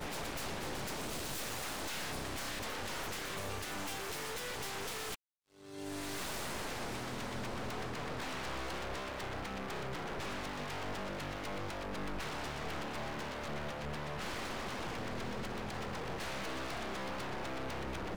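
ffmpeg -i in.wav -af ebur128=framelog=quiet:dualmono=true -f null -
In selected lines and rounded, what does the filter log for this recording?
Integrated loudness:
  I:         -37.2 LUFS
  Threshold: -47.3 LUFS
Loudness range:
  LRA:         1.4 LU
  Threshold: -57.4 LUFS
  LRA low:   -37.8 LUFS
  LRA high:  -36.3 LUFS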